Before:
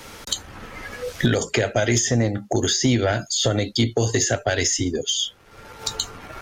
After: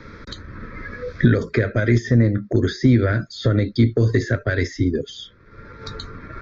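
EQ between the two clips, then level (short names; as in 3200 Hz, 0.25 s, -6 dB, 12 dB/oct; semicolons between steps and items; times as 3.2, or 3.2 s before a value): air absorption 140 m; tape spacing loss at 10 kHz 23 dB; fixed phaser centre 2900 Hz, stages 6; +6.5 dB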